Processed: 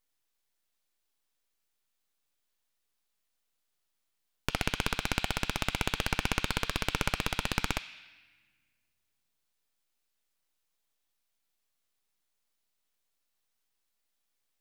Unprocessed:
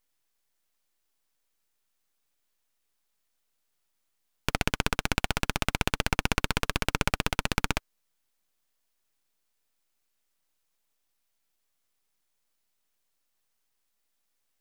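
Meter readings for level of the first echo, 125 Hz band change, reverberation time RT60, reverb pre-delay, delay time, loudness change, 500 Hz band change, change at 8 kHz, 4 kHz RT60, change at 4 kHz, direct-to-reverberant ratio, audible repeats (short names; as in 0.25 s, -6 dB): none, -3.5 dB, 1.4 s, 3 ms, none, -3.0 dB, -3.5 dB, -3.5 dB, 1.2 s, -2.0 dB, 10.0 dB, none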